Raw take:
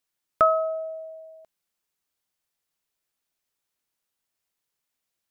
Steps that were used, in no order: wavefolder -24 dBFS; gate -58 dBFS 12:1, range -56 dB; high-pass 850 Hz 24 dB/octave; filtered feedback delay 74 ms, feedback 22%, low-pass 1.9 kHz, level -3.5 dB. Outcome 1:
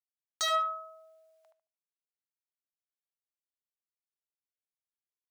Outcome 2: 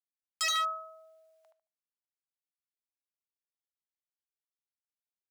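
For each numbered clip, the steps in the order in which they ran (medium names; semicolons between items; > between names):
gate > high-pass > wavefolder > filtered feedback delay; gate > filtered feedback delay > wavefolder > high-pass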